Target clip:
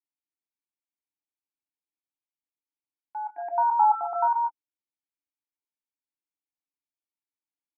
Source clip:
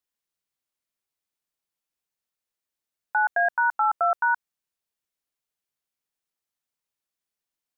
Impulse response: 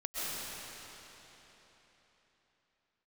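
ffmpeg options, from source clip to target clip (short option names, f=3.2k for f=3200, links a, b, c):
-filter_complex "[0:a]asplit=3[a][b][c];[a]bandpass=f=300:t=q:w=8,volume=0dB[d];[b]bandpass=f=870:t=q:w=8,volume=-6dB[e];[c]bandpass=f=2.24k:t=q:w=8,volume=-9dB[f];[d][e][f]amix=inputs=3:normalize=0,asettb=1/sr,asplit=3[g][h][i];[g]atrim=end=3.384[j];[h]atrim=start=3.38:end=4.33,asetpts=PTS-STARTPTS,afade=t=in:d=0.004:c=qsin,afade=t=out:st=0.946:d=0.004:c=qsin,equalizer=f=810:t=o:w=2.5:g=13.5[k];[i]atrim=start=4.326[l];[j][k]acrossfade=d=0.004:c1=hsin:c2=qsin[m];[m][l]acrossfade=d=0.004:c1=qsin:c2=hsin[n];[1:a]atrim=start_sample=2205,afade=t=out:st=0.2:d=0.01,atrim=end_sample=9261[o];[n][o]afir=irnorm=-1:irlink=0,volume=2.5dB"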